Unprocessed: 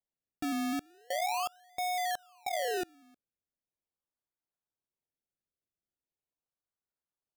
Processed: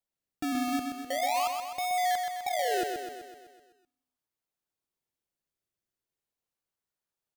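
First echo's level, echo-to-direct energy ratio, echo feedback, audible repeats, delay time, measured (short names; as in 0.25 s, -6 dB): -6.0 dB, -4.0 dB, 58%, 7, 0.127 s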